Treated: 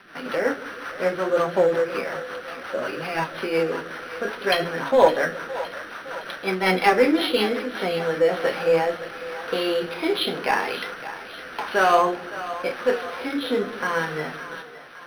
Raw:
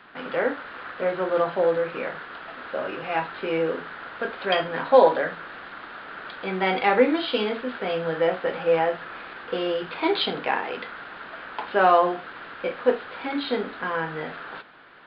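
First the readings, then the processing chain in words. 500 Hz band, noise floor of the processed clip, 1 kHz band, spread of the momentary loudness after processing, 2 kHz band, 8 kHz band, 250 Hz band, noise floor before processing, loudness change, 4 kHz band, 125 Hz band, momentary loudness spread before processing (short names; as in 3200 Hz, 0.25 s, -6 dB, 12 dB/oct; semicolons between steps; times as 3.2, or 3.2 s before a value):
+1.5 dB, -39 dBFS, +0.5 dB, 15 LU, +3.0 dB, n/a, +2.5 dB, -41 dBFS, +1.0 dB, +3.0 dB, +3.0 dB, 18 LU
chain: high shelf 2500 Hz +10.5 dB; in parallel at -4 dB: overloaded stage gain 15 dB; on the sum: rotary speaker horn 5.5 Hz, later 0.9 Hz, at 7.57; flange 0.64 Hz, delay 4.9 ms, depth 9.3 ms, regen +60%; split-band echo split 490 Hz, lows 0.159 s, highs 0.563 s, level -13.5 dB; decimation joined by straight lines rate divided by 6×; gain +3.5 dB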